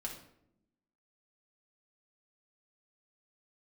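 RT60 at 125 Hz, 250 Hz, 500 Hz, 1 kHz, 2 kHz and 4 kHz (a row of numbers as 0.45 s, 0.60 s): 1.1 s, 1.3 s, 0.90 s, 0.65 s, 0.60 s, 0.45 s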